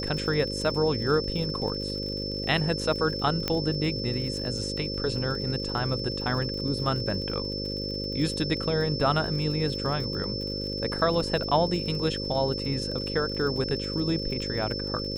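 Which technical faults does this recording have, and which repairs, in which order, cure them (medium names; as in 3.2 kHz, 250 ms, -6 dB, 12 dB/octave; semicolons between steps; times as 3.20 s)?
buzz 50 Hz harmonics 11 -34 dBFS
crackle 48 per s -35 dBFS
whine 5.3 kHz -33 dBFS
3.48 s: pop -11 dBFS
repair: de-click; de-hum 50 Hz, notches 11; band-stop 5.3 kHz, Q 30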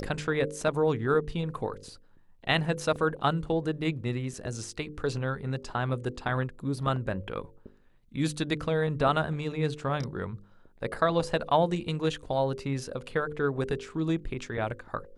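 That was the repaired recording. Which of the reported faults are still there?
nothing left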